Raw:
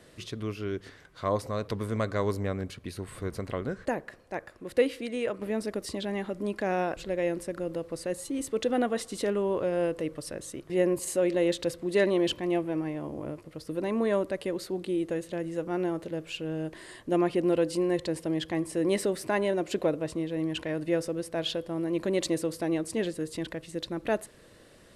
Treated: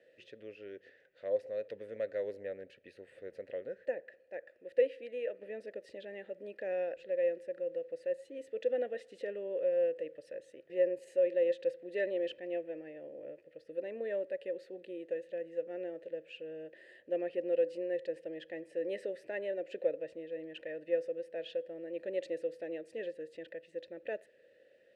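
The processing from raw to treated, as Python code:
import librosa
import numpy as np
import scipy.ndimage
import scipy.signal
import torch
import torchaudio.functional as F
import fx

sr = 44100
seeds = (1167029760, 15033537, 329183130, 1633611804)

y = fx.vowel_filter(x, sr, vowel='e')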